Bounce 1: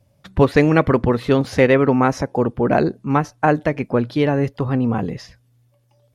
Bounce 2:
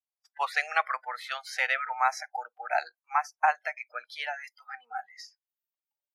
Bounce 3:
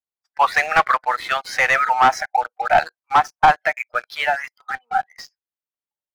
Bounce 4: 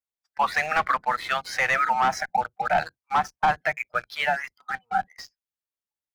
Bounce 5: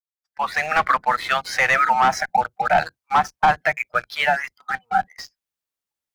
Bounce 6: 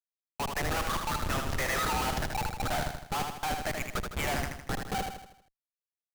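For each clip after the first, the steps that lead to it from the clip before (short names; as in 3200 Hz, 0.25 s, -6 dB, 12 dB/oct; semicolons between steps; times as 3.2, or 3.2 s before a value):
spectral noise reduction 28 dB; elliptic high-pass 760 Hz, stop band 60 dB; gain -4 dB
sample leveller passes 3; high shelf 2700 Hz -10.5 dB; gain +6 dB
octaver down 2 oct, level -2 dB; limiter -10.5 dBFS, peak gain reduction 5.5 dB; gain -3.5 dB
opening faded in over 0.85 s; gain +5 dB
Schmitt trigger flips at -21 dBFS; on a send: feedback echo 79 ms, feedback 48%, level -5 dB; on the sum: gain -8.5 dB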